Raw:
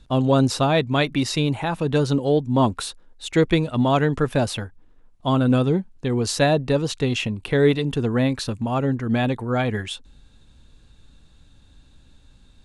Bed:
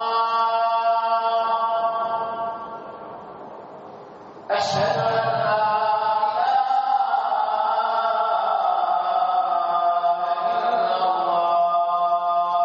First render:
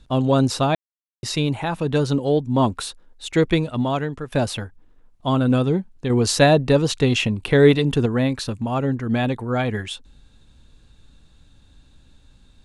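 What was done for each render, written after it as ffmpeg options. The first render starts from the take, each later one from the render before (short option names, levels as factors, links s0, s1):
-filter_complex "[0:a]asplit=6[s0][s1][s2][s3][s4][s5];[s0]atrim=end=0.75,asetpts=PTS-STARTPTS,afade=t=out:st=0.746:d=0.004:c=hsin[s6];[s1]atrim=start=0.75:end=1.23,asetpts=PTS-STARTPTS,volume=0[s7];[s2]atrim=start=1.23:end=4.32,asetpts=PTS-STARTPTS,afade=t=in:d=0.004:c=hsin,afade=t=out:st=2.36:d=0.73:silence=0.223872[s8];[s3]atrim=start=4.32:end=6.102,asetpts=PTS-STARTPTS,afade=t=in:d=0.004:c=hsin:silence=0.223872[s9];[s4]atrim=start=6.098:end=8.062,asetpts=PTS-STARTPTS,volume=1.58[s10];[s5]atrim=start=8.058[s11];[s6][s7][s8][s9]concat=n=4:v=0:a=1[s12];[s12][s10]acrossfade=d=0.004:c1=hsin:c2=hsin[s13];[s13][s11]acrossfade=d=0.004:c1=hsin:c2=hsin"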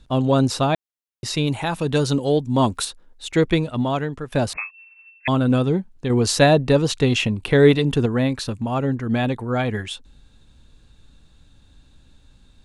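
-filter_complex "[0:a]asettb=1/sr,asplit=3[s0][s1][s2];[s0]atrim=end=1.474[s3];[s1]atrim=start=1.47:end=2.85,asetpts=PTS-STARTPTS,afade=t=in:d=0.004:c=qsin,afade=t=out:st=1.376:d=0.004:c=qsin,highshelf=f=3700:g=8.5[s4];[s2]atrim=start=2.846[s5];[s3][s4]acrossfade=d=0.004:c1=hsin:c2=qsin[s6];[s6][s5]acrossfade=d=0.004:c1=qsin:c2=hsin,asettb=1/sr,asplit=3[s7][s8][s9];[s7]atrim=end=4.534[s10];[s8]atrim=start=4.53:end=5.28,asetpts=PTS-STARTPTS,afade=t=in:d=0.004:c=qsin,afade=t=out:st=0.746:d=0.004:c=qsin,lowpass=f=2300:t=q:w=0.5098,lowpass=f=2300:t=q:w=0.6013,lowpass=f=2300:t=q:w=0.9,lowpass=f=2300:t=q:w=2.563,afreqshift=-2700[s11];[s9]atrim=start=5.276[s12];[s10][s11]acrossfade=d=0.004:c1=hsin:c2=qsin[s13];[s13][s12]acrossfade=d=0.004:c1=qsin:c2=hsin"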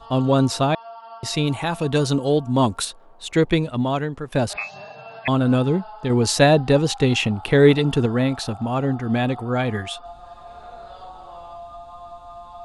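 -filter_complex "[1:a]volume=0.112[s0];[0:a][s0]amix=inputs=2:normalize=0"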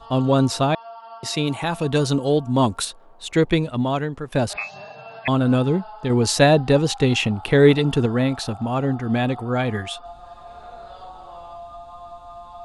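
-filter_complex "[0:a]asettb=1/sr,asplit=3[s0][s1][s2];[s0]atrim=end=0.814[s3];[s1]atrim=start=0.81:end=1.62,asetpts=PTS-STARTPTS,afade=t=in:d=0.004:c=qsin,afade=t=out:st=0.806:d=0.004:c=qsin,highpass=150[s4];[s2]atrim=start=1.616[s5];[s3][s4]acrossfade=d=0.004:c1=hsin:c2=qsin[s6];[s6][s5]acrossfade=d=0.004:c1=qsin:c2=hsin"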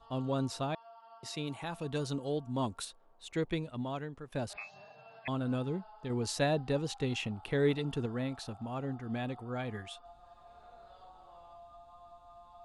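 -af "volume=0.168"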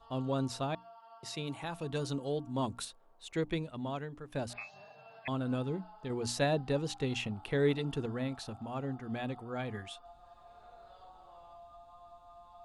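-af "bandreject=f=60:t=h:w=6,bandreject=f=120:t=h:w=6,bandreject=f=180:t=h:w=6,bandreject=f=240:t=h:w=6,bandreject=f=300:t=h:w=6"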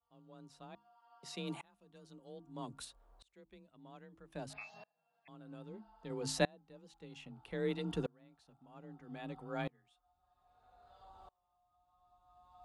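-af "afreqshift=27,aeval=exprs='val(0)*pow(10,-31*if(lt(mod(-0.62*n/s,1),2*abs(-0.62)/1000),1-mod(-0.62*n/s,1)/(2*abs(-0.62)/1000),(mod(-0.62*n/s,1)-2*abs(-0.62)/1000)/(1-2*abs(-0.62)/1000))/20)':c=same"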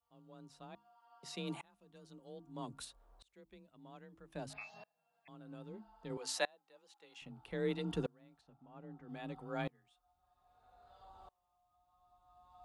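-filter_complex "[0:a]asettb=1/sr,asplit=3[s0][s1][s2];[s0]atrim=end=6.174[s3];[s1]atrim=start=6.17:end=7.22,asetpts=PTS-STARTPTS,afade=t=in:d=0.004:c=qsin,afade=t=out:st=1.046:d=0.004:c=qsin,highpass=660[s4];[s2]atrim=start=7.216[s5];[s3][s4]acrossfade=d=0.004:c1=hsin:c2=qsin[s6];[s6][s5]acrossfade=d=0.004:c1=qsin:c2=hsin,asettb=1/sr,asplit=3[s7][s8][s9];[s7]atrim=end=8.414[s10];[s8]atrim=start=8.41:end=9.09,asetpts=PTS-STARTPTS,afade=t=in:d=0.004:c=qsin,afade=t=out:st=0.676:d=0.004:c=qsin,aemphasis=mode=reproduction:type=75fm[s11];[s9]atrim=start=9.086[s12];[s10][s11]acrossfade=d=0.004:c1=hsin:c2=qsin[s13];[s13][s12]acrossfade=d=0.004:c1=qsin:c2=hsin"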